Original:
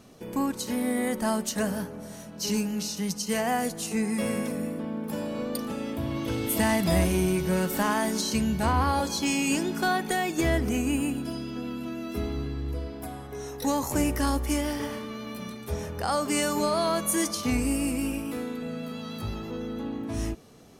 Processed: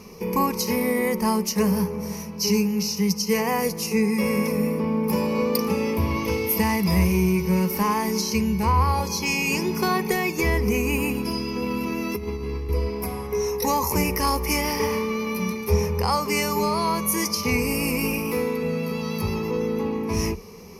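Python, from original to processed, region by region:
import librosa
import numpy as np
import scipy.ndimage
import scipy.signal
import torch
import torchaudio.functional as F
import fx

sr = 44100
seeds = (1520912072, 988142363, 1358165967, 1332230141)

y = fx.chain(x, sr, fx.highpass(hz=44.0, slope=12),
    fx.over_compress(threshold_db=-34.0, ratio=-0.5), at=(11.62, 12.69))
y = fx.ripple_eq(y, sr, per_octave=0.83, db=15)
y = fx.rider(y, sr, range_db=4, speed_s=0.5)
y = F.gain(torch.from_numpy(y), 3.0).numpy()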